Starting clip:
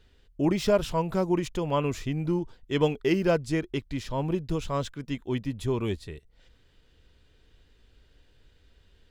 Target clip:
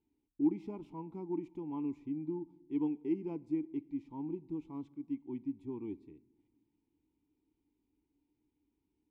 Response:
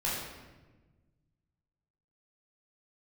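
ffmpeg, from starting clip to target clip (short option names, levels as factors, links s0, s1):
-filter_complex "[0:a]asplit=3[s0][s1][s2];[s0]bandpass=f=300:t=q:w=8,volume=1[s3];[s1]bandpass=f=870:t=q:w=8,volume=0.501[s4];[s2]bandpass=f=2240:t=q:w=8,volume=0.355[s5];[s3][s4][s5]amix=inputs=3:normalize=0,equalizer=f=2800:w=0.34:g=-15,asplit=2[s6][s7];[1:a]atrim=start_sample=2205[s8];[s7][s8]afir=irnorm=-1:irlink=0,volume=0.0447[s9];[s6][s9]amix=inputs=2:normalize=0,volume=1.12"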